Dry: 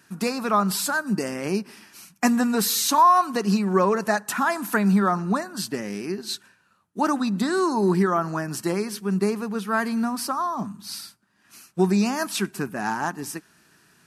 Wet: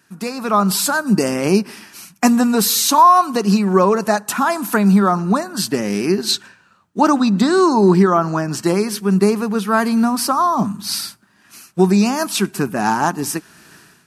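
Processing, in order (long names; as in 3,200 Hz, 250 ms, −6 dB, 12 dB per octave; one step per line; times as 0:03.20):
0:06.31–0:08.66: parametric band 11,000 Hz −15 dB 0.37 octaves
automatic gain control gain up to 16 dB
dynamic equaliser 1,800 Hz, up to −6 dB, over −32 dBFS, Q 2.5
level −1 dB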